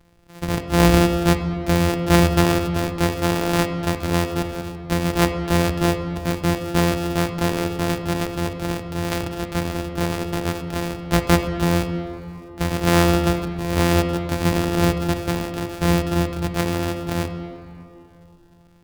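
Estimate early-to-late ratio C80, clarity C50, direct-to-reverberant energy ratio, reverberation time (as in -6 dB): 8.0 dB, 7.0 dB, 5.5 dB, 2.8 s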